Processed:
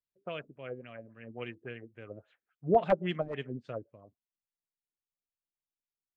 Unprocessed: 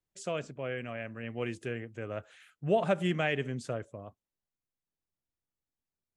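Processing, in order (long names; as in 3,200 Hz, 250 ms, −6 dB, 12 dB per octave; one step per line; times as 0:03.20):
wrap-around overflow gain 17.5 dB
auto-filter low-pass sine 3.6 Hz 290–4,100 Hz
expander for the loud parts 1.5 to 1, over −48 dBFS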